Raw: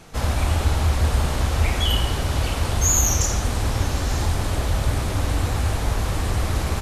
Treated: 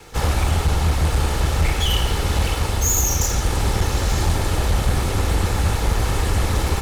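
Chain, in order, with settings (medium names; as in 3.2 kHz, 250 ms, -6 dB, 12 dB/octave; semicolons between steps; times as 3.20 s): comb filter that takes the minimum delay 2.3 ms; in parallel at +3 dB: gain riding 0.5 s; on the sum: hard clipper -7 dBFS, distortion -22 dB; trim -4.5 dB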